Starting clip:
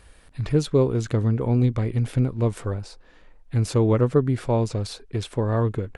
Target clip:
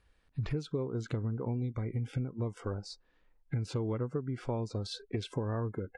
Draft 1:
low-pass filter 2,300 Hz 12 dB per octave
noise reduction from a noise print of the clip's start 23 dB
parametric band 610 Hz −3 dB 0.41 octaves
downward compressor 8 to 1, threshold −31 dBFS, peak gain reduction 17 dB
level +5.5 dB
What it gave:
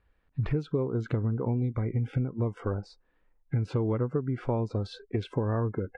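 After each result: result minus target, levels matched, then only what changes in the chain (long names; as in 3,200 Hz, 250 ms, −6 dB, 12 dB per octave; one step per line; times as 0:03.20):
8,000 Hz band −15.0 dB; downward compressor: peak gain reduction −5.5 dB
change: low-pass filter 5,700 Hz 12 dB per octave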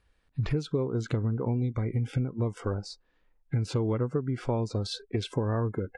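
downward compressor: peak gain reduction −5.5 dB
change: downward compressor 8 to 1, threshold −37.5 dBFS, peak gain reduction 23 dB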